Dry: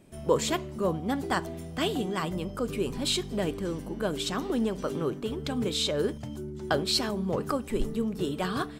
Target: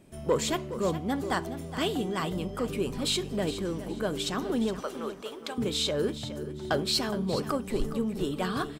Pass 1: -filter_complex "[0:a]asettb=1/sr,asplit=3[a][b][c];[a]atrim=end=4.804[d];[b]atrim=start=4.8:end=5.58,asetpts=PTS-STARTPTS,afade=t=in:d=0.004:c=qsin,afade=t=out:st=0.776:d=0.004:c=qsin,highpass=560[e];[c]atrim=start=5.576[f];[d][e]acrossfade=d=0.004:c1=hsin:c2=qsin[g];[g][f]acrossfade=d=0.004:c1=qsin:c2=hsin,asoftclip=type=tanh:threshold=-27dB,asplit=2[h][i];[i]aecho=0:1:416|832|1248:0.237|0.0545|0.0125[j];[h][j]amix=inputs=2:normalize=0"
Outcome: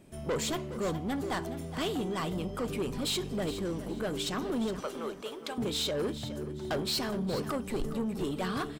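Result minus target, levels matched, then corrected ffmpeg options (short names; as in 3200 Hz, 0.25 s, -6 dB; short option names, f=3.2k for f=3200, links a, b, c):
soft clip: distortion +13 dB
-filter_complex "[0:a]asettb=1/sr,asplit=3[a][b][c];[a]atrim=end=4.804[d];[b]atrim=start=4.8:end=5.58,asetpts=PTS-STARTPTS,afade=t=in:d=0.004:c=qsin,afade=t=out:st=0.776:d=0.004:c=qsin,highpass=560[e];[c]atrim=start=5.576[f];[d][e]acrossfade=d=0.004:c1=hsin:c2=qsin[g];[g][f]acrossfade=d=0.004:c1=qsin:c2=hsin,asoftclip=type=tanh:threshold=-15.5dB,asplit=2[h][i];[i]aecho=0:1:416|832|1248:0.237|0.0545|0.0125[j];[h][j]amix=inputs=2:normalize=0"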